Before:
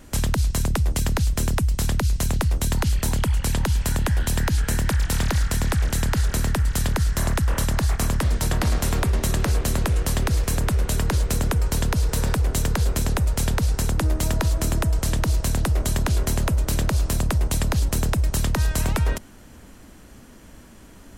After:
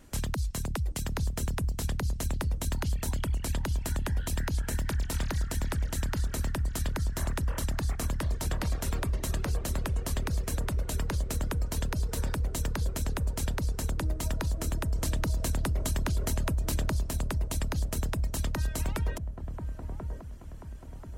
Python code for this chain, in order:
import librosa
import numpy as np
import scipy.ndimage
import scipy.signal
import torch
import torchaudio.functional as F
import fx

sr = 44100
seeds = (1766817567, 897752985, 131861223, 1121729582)

y = fx.dereverb_blind(x, sr, rt60_s=0.81)
y = fx.echo_wet_lowpass(y, sr, ms=1036, feedback_pct=46, hz=920.0, wet_db=-6.0)
y = fx.env_flatten(y, sr, amount_pct=50, at=(14.95, 17.03))
y = y * librosa.db_to_amplitude(-8.5)